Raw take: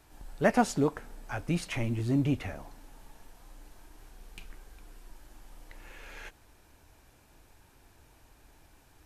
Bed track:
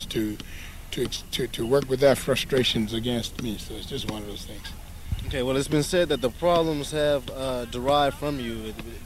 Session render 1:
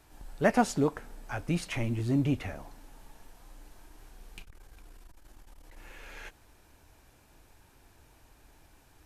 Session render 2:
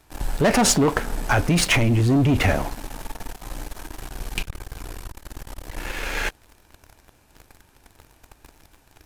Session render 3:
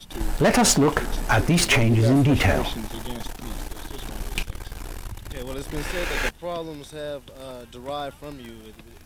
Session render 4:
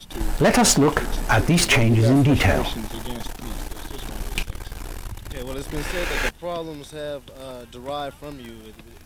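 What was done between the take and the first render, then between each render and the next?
0:04.42–0:05.77: saturating transformer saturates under 100 Hz
leveller curve on the samples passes 3; in parallel at +0.5 dB: compressor whose output falls as the input rises −25 dBFS, ratio −0.5
mix in bed track −9.5 dB
level +1.5 dB

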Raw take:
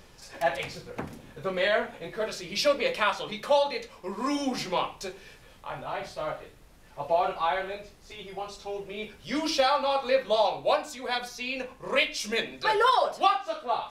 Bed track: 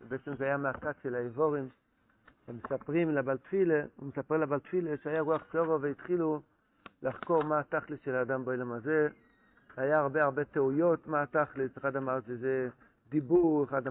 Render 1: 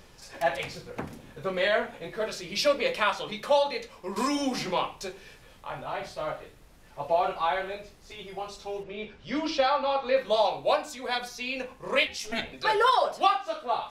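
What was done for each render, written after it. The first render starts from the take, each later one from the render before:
0:04.16–0:04.71: multiband upward and downward compressor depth 100%
0:08.83–0:10.17: high-frequency loss of the air 130 metres
0:12.07–0:12.53: ring modulation 220 Hz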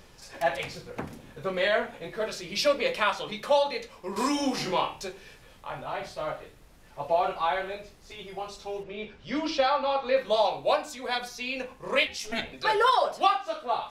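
0:04.10–0:05.01: flutter between parallel walls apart 4.6 metres, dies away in 0.25 s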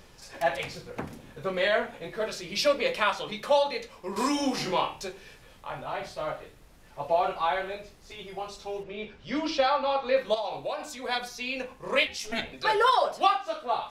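0:10.34–0:10.97: downward compressor, threshold −28 dBFS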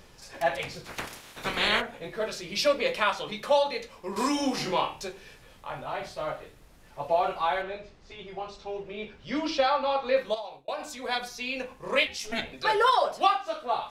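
0:00.84–0:01.80: ceiling on every frequency bin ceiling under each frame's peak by 26 dB
0:07.62–0:08.84: high-frequency loss of the air 110 metres
0:10.19–0:10.68: fade out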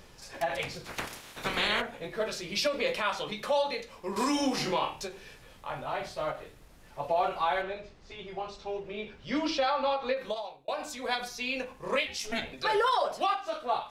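brickwall limiter −18.5 dBFS, peak gain reduction 9 dB
every ending faded ahead of time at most 160 dB per second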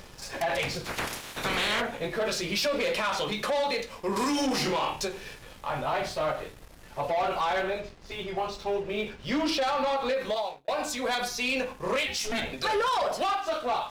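leveller curve on the samples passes 2
brickwall limiter −22 dBFS, peak gain reduction 3.5 dB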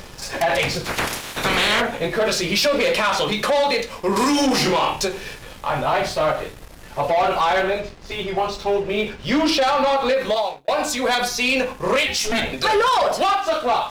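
level +9 dB

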